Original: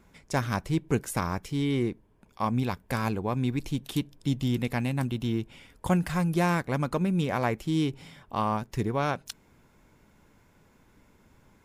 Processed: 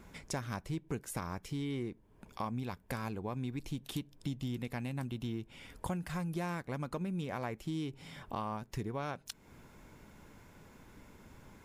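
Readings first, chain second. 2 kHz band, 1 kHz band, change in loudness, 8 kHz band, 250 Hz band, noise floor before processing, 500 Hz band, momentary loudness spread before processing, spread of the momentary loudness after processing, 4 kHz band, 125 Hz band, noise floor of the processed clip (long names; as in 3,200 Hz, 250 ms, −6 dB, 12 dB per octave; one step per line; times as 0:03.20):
−11.0 dB, −11.0 dB, −10.5 dB, −6.5 dB, −10.5 dB, −62 dBFS, −11.0 dB, 7 LU, 19 LU, −9.0 dB, −10.5 dB, −63 dBFS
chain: downward compressor 3 to 1, threshold −44 dBFS, peak gain reduction 18.5 dB
level +4 dB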